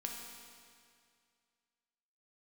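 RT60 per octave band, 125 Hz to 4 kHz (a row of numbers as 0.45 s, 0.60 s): 2.3 s, 2.2 s, 2.2 s, 2.2 s, 2.2 s, 2.1 s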